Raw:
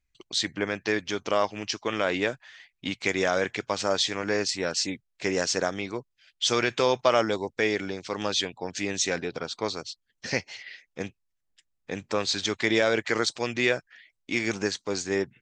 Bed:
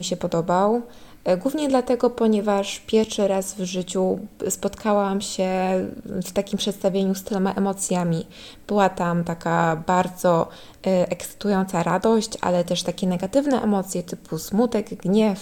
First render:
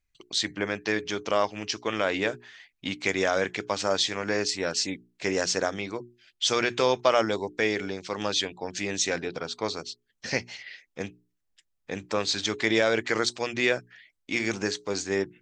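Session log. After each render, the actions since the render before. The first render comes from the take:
mains-hum notches 60/120/180/240/300/360/420 Hz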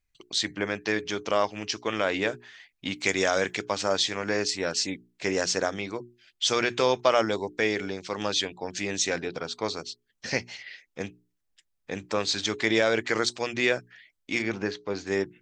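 0:02.96–0:03.62: high-shelf EQ 5,600 Hz +10 dB
0:14.42–0:15.07: high-frequency loss of the air 200 metres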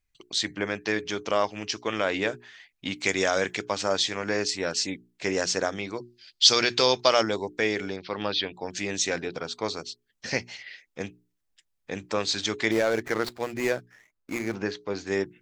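0:05.97–0:07.23: parametric band 4,600 Hz +14.5 dB 0.7 octaves
0:07.96–0:08.54: Butterworth low-pass 4,800 Hz 48 dB per octave
0:12.71–0:14.55: running median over 15 samples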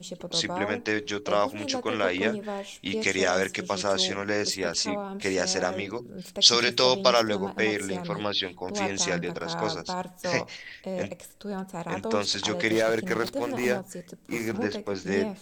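mix in bed −13 dB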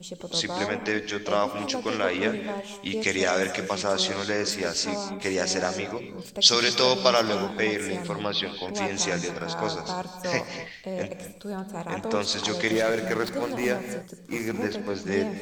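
reverb whose tail is shaped and stops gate 270 ms rising, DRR 10 dB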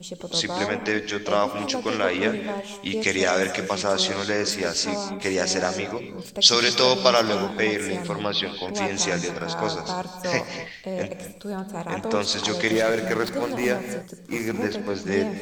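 level +2.5 dB
brickwall limiter −2 dBFS, peak gain reduction 1 dB

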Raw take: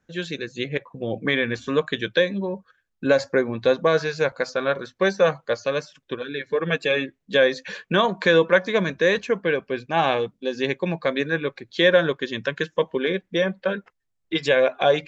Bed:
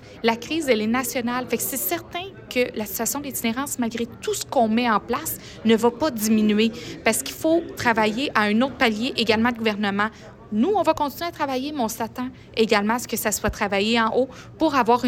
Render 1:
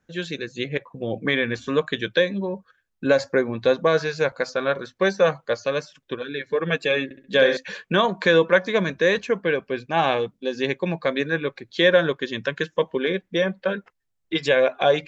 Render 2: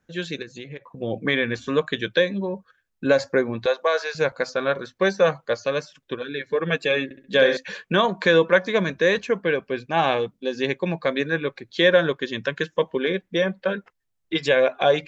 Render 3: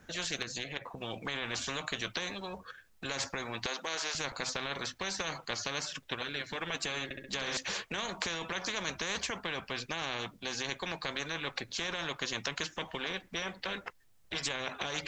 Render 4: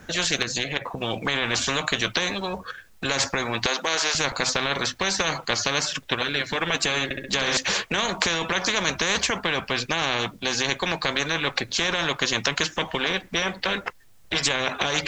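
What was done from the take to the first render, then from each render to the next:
0:07.04–0:07.57: flutter between parallel walls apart 11.4 metres, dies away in 0.55 s
0:00.42–0:00.98: downward compressor 4 to 1, threshold −34 dBFS; 0:03.66–0:04.15: high-pass filter 510 Hz 24 dB per octave
brickwall limiter −16 dBFS, peak gain reduction 11.5 dB; every bin compressed towards the loudest bin 4 to 1
level +12 dB

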